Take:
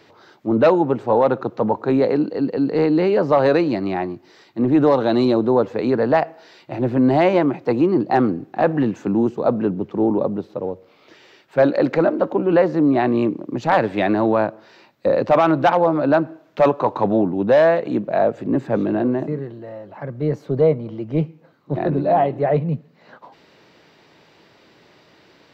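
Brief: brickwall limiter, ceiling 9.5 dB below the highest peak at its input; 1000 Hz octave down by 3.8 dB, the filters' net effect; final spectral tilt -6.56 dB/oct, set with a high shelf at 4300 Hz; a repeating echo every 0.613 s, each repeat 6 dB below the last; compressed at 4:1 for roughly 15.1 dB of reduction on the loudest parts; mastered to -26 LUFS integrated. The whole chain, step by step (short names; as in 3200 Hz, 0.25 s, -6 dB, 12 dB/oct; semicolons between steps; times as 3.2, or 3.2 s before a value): bell 1000 Hz -6 dB; high shelf 4300 Hz +7 dB; compressor 4:1, threshold -31 dBFS; limiter -25.5 dBFS; feedback echo 0.613 s, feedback 50%, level -6 dB; gain +8 dB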